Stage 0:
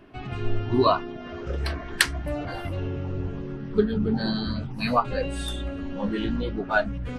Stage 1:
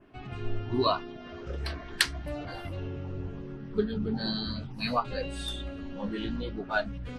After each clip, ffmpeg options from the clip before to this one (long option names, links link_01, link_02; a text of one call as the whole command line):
ffmpeg -i in.wav -af "adynamicequalizer=threshold=0.00562:dfrequency=4200:dqfactor=1.2:tfrequency=4200:tqfactor=1.2:attack=5:release=100:ratio=0.375:range=3.5:mode=boostabove:tftype=bell,volume=-6.5dB" out.wav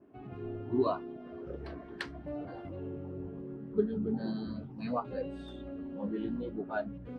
ffmpeg -i in.wav -af "bandpass=frequency=330:width_type=q:width=0.79:csg=0" out.wav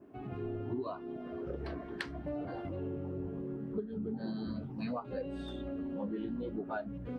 ffmpeg -i in.wav -af "acompressor=threshold=-37dB:ratio=16,volume=3.5dB" out.wav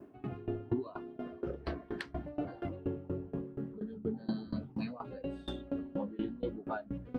ffmpeg -i in.wav -af "aeval=exprs='val(0)*pow(10,-22*if(lt(mod(4.2*n/s,1),2*abs(4.2)/1000),1-mod(4.2*n/s,1)/(2*abs(4.2)/1000),(mod(4.2*n/s,1)-2*abs(4.2)/1000)/(1-2*abs(4.2)/1000))/20)':channel_layout=same,volume=7dB" out.wav